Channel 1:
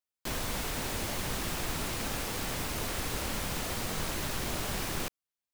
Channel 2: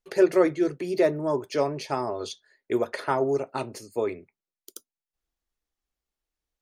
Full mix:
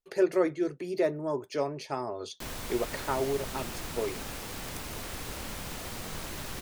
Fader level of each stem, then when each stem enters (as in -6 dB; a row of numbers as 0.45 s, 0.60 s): -4.5 dB, -5.5 dB; 2.15 s, 0.00 s